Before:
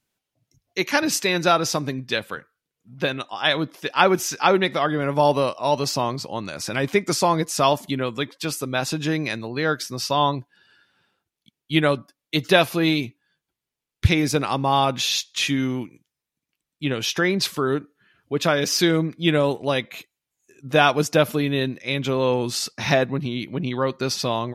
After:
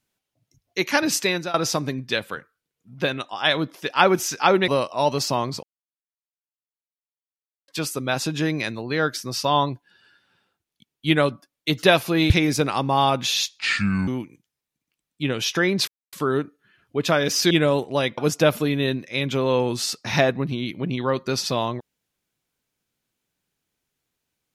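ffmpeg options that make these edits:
-filter_complex "[0:a]asplit=11[s0][s1][s2][s3][s4][s5][s6][s7][s8][s9][s10];[s0]atrim=end=1.54,asetpts=PTS-STARTPTS,afade=t=out:st=1.27:d=0.27:silence=0.0841395[s11];[s1]atrim=start=1.54:end=4.682,asetpts=PTS-STARTPTS,afade=t=in:d=0.004:c=hsin:silence=0.0841395[s12];[s2]atrim=start=5.338:end=6.29,asetpts=PTS-STARTPTS,afade=t=out:st=0.948:d=0.004:c=hsin[s13];[s3]atrim=start=6.29:end=8.34,asetpts=PTS-STARTPTS,volume=0[s14];[s4]atrim=start=8.34:end=12.962,asetpts=PTS-STARTPTS,afade=t=in:d=0.004:c=hsin[s15];[s5]atrim=start=14.048:end=15.344[s16];[s6]atrim=start=15.34:end=15.69,asetpts=PTS-STARTPTS,asetrate=31752,aresample=44100[s17];[s7]atrim=start=15.686:end=17.49,asetpts=PTS-STARTPTS,afade=t=out:st=1.8:d=0.004:c=hsin,apad=pad_dur=0.25[s18];[s8]atrim=start=17.49:end=18.872,asetpts=PTS-STARTPTS,afade=t=in:d=0.004:c=hsin[s19];[s9]atrim=start=19.228:end=19.902[s20];[s10]atrim=start=20.908[s21];[s11][s12]concat=n=2:v=0:a=1[s22];[s13][s14][s15]concat=n=3:v=0:a=1[s23];[s22][s23]acrossfade=d=0.004:c1=hsin:c2=hsin[s24];[s24][s16]acrossfade=d=0.004:c1=hsin:c2=hsin[s25];[s25][s17]acrossfade=d=0.004:c1=hsin:c2=hsin[s26];[s18][s19]concat=n=2:v=0:a=1[s27];[s26][s27]acrossfade=d=0.004:c1=hsin:c2=hsin[s28];[s28][s20]acrossfade=d=0.004:c1=hsin:c2=hsin[s29];[s29][s21]acrossfade=d=0.004:c1=hsin:c2=hsin"

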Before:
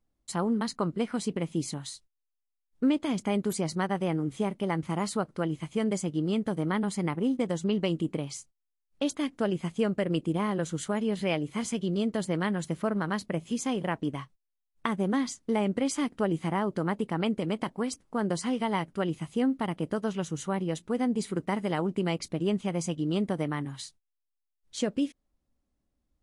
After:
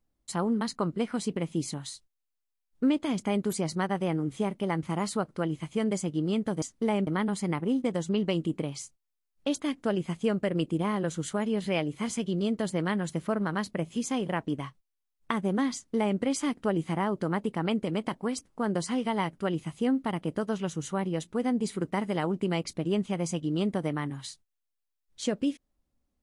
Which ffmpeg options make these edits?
-filter_complex "[0:a]asplit=3[s0][s1][s2];[s0]atrim=end=6.622[s3];[s1]atrim=start=15.288:end=15.742[s4];[s2]atrim=start=6.618[s5];[s3][s4]acrossfade=d=0.004:c1=hsin:c2=hsin[s6];[s6][s5]acrossfade=d=0.004:c1=hsin:c2=hsin"

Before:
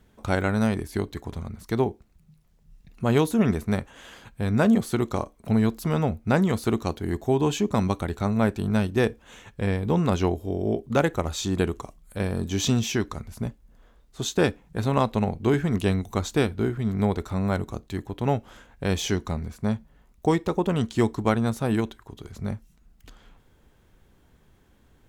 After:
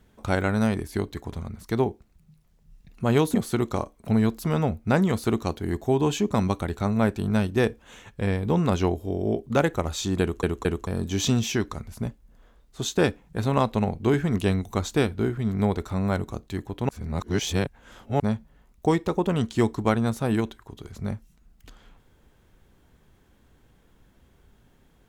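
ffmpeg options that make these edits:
-filter_complex "[0:a]asplit=7[s0][s1][s2][s3][s4][s5][s6];[s0]atrim=end=3.342[s7];[s1]atrim=start=4.738:end=11.832[s8];[s2]atrim=start=11.608:end=11.832[s9];[s3]atrim=start=11.608:end=11.832[s10];[s4]atrim=start=12.268:end=18.292[s11];[s5]atrim=start=18.288:end=19.602,asetpts=PTS-STARTPTS,areverse[s12];[s6]atrim=start=19.598[s13];[s7][s8]acrossfade=d=0.004:c1=hsin:c2=hsin[s14];[s14][s9]acrossfade=d=0.004:c1=hsin:c2=hsin[s15];[s15][s10]acrossfade=d=0.004:c1=hsin:c2=hsin[s16];[s16][s11]acrossfade=d=0.004:c1=hsin:c2=hsin[s17];[s17][s12]acrossfade=d=0.004:c1=hsin:c2=hsin[s18];[s18][s13]acrossfade=d=0.004:c1=hsin:c2=hsin"

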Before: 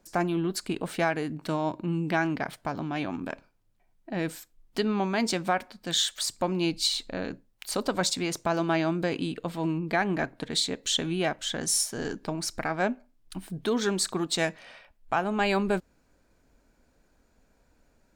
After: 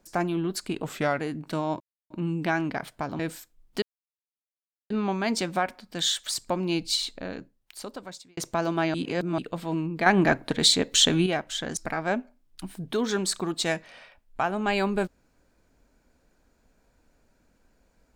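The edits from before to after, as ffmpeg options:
-filter_complex "[0:a]asplit=12[s0][s1][s2][s3][s4][s5][s6][s7][s8][s9][s10][s11];[s0]atrim=end=0.844[s12];[s1]atrim=start=0.84:end=1.15,asetpts=PTS-STARTPTS,asetrate=38808,aresample=44100,atrim=end_sample=15535,asetpts=PTS-STARTPTS[s13];[s2]atrim=start=1.146:end=1.76,asetpts=PTS-STARTPTS,afade=t=out:st=0.61:d=0.004:c=hsin,apad=pad_dur=0.3[s14];[s3]atrim=start=1.76:end=2.852,asetpts=PTS-STARTPTS,afade=t=in:d=0.004:c=hsin[s15];[s4]atrim=start=4.188:end=4.82,asetpts=PTS-STARTPTS,afade=t=out:st=0.628:d=0.004:c=hsin,apad=pad_dur=1.08[s16];[s5]atrim=start=4.82:end=8.29,asetpts=PTS-STARTPTS,afade=t=in:d=0.004:c=hsin,afade=t=out:st=2.03:d=1.44[s17];[s6]atrim=start=8.29:end=8.862,asetpts=PTS-STARTPTS,afade=t=in:d=0.004:c=hsin[s18];[s7]atrim=start=8.858:end=9.302,asetpts=PTS-STARTPTS,areverse[s19];[s8]atrim=start=9.298:end=9.982[s20];[s9]atrim=start=9.978:end=11.182,asetpts=PTS-STARTPTS,volume=2.37[s21];[s10]atrim=start=11.178:end=11.692[s22];[s11]atrim=start=12.498[s23];[s12][s13]acrossfade=d=0.004:c1=hsin:c2=hsin[s24];[s14][s15]concat=n=2:v=0:a=1[s25];[s24][s25]acrossfade=d=0.004:c1=hsin:c2=hsin[s26];[s16][s17][s18]concat=n=3:v=0:a=1[s27];[s26][s27]acrossfade=d=0.004:c1=hsin:c2=hsin[s28];[s28][s19]acrossfade=d=0.004:c1=hsin:c2=hsin[s29];[s29][s20]acrossfade=d=0.004:c1=hsin:c2=hsin[s30];[s30][s21]acrossfade=d=0.004:c1=hsin:c2=hsin[s31];[s31][s22]acrossfade=d=0.004:c1=hsin:c2=hsin[s32];[s32][s23]acrossfade=d=0.004:c1=hsin:c2=hsin"

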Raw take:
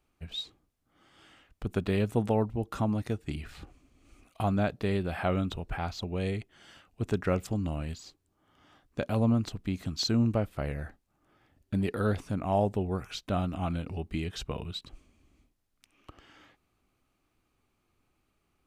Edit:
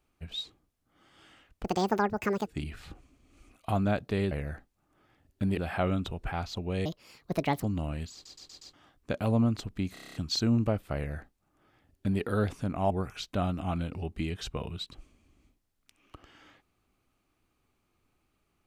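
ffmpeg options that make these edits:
-filter_complex "[0:a]asplit=20[s0][s1][s2][s3][s4][s5][s6][s7][s8][s9][s10][s11][s12][s13][s14][s15][s16][s17][s18][s19];[s0]atrim=end=1.644[s20];[s1]atrim=start=1.64:end=3.18,asetpts=PTS-STARTPTS,asetrate=82467,aresample=44100[s21];[s2]atrim=start=3.176:end=5.032[s22];[s3]atrim=start=10.628:end=11.892[s23];[s4]atrim=start=5.028:end=6.314[s24];[s5]atrim=start=6.31:end=7.52,asetpts=PTS-STARTPTS,asetrate=68355,aresample=44100,atrim=end_sample=34426,asetpts=PTS-STARTPTS[s25];[s6]atrim=start=7.516:end=8.142[s26];[s7]atrim=start=8.018:end=8.142[s27];[s8]atrim=start=8.018:end=8.142[s28];[s9]atrim=start=8.018:end=8.142[s29];[s10]atrim=start=8.018:end=8.142[s30];[s11]atrim=start=8.618:end=9.852[s31];[s12]atrim=start=9.818:end=9.852[s32];[s13]atrim=start=9.818:end=9.852[s33];[s14]atrim=start=9.818:end=9.852[s34];[s15]atrim=start=9.818:end=9.852[s35];[s16]atrim=start=9.818:end=9.852[s36];[s17]atrim=start=9.818:end=9.852[s37];[s18]atrim=start=9.818:end=12.582[s38];[s19]atrim=start=12.848[s39];[s20][s21]acrossfade=d=0.004:c1=hsin:c2=hsin[s40];[s40][s22]acrossfade=d=0.004:c1=hsin:c2=hsin[s41];[s41][s23]acrossfade=d=0.004:c1=hsin:c2=hsin[s42];[s42][s24]acrossfade=d=0.004:c1=hsin:c2=hsin[s43];[s43][s25]acrossfade=d=0.004:c1=hsin:c2=hsin[s44];[s44][s26]acrossfade=d=0.004:c1=hsin:c2=hsin[s45];[s45][s27]acrossfade=d=0.004:c1=hsin:c2=hsin[s46];[s46][s28]acrossfade=d=0.004:c1=hsin:c2=hsin[s47];[s47][s29]acrossfade=d=0.004:c1=hsin:c2=hsin[s48];[s48][s30]acrossfade=d=0.004:c1=hsin:c2=hsin[s49];[s49][s31]acrossfade=d=0.004:c1=hsin:c2=hsin[s50];[s50][s32]acrossfade=d=0.004:c1=hsin:c2=hsin[s51];[s51][s33]acrossfade=d=0.004:c1=hsin:c2=hsin[s52];[s52][s34]acrossfade=d=0.004:c1=hsin:c2=hsin[s53];[s53][s35]acrossfade=d=0.004:c1=hsin:c2=hsin[s54];[s54][s36]acrossfade=d=0.004:c1=hsin:c2=hsin[s55];[s55][s37]acrossfade=d=0.004:c1=hsin:c2=hsin[s56];[s56][s38]acrossfade=d=0.004:c1=hsin:c2=hsin[s57];[s57][s39]acrossfade=d=0.004:c1=hsin:c2=hsin"

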